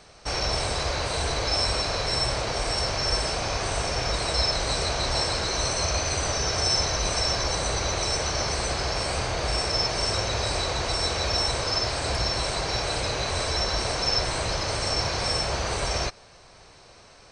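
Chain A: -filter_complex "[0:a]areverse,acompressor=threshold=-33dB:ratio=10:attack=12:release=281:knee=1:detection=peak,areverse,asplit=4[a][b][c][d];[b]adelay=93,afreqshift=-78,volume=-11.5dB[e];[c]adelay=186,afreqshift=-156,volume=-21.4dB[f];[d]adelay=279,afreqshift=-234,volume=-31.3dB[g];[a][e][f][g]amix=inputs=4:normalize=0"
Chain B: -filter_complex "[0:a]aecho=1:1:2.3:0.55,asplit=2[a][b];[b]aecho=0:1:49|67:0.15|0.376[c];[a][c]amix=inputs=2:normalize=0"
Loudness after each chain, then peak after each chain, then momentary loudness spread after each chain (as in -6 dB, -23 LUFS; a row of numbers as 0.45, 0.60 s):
-35.0, -23.5 LUFS; -22.0, -9.0 dBFS; 2, 4 LU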